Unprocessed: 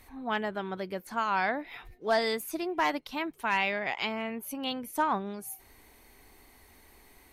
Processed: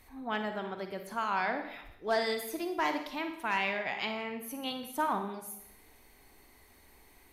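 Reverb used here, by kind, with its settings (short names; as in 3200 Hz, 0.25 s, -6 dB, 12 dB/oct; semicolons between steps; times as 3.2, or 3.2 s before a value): Schroeder reverb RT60 0.74 s, DRR 6 dB; gain -3.5 dB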